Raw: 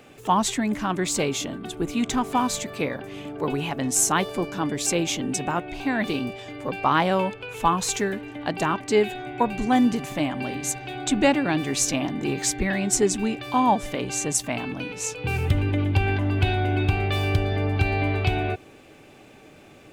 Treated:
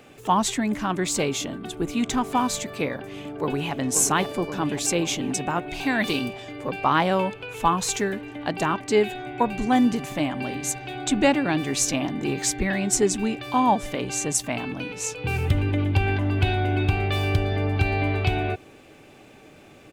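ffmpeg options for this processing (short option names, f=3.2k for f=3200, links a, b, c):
-filter_complex "[0:a]asplit=2[a][b];[b]afade=t=in:st=2.95:d=0.01,afade=t=out:st=3.79:d=0.01,aecho=0:1:530|1060|1590|2120|2650|3180|3710|4240|4770|5300|5830:0.398107|0.278675|0.195073|0.136551|0.0955855|0.0669099|0.0468369|0.0327858|0.0229501|0.0160651|0.0112455[c];[a][c]amix=inputs=2:normalize=0,asplit=3[d][e][f];[d]afade=t=out:st=5.7:d=0.02[g];[e]highshelf=f=2.3k:g=8.5,afade=t=in:st=5.7:d=0.02,afade=t=out:st=6.27:d=0.02[h];[f]afade=t=in:st=6.27:d=0.02[i];[g][h][i]amix=inputs=3:normalize=0"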